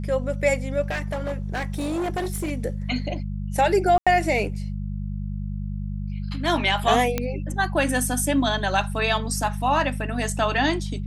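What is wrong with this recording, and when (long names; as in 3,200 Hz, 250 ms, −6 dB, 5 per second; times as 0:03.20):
mains hum 50 Hz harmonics 4 −29 dBFS
0:00.81–0:02.52: clipping −23 dBFS
0:03.98–0:04.07: drop-out 86 ms
0:07.18: click −9 dBFS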